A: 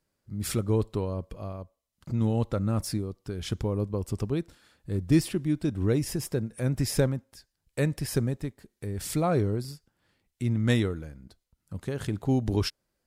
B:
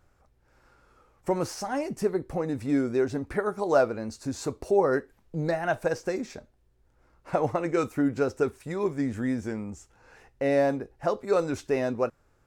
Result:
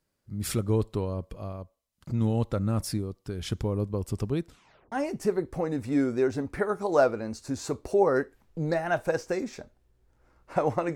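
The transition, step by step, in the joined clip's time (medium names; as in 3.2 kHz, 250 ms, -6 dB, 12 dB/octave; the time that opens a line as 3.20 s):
A
4.48 s: tape stop 0.44 s
4.92 s: go over to B from 1.69 s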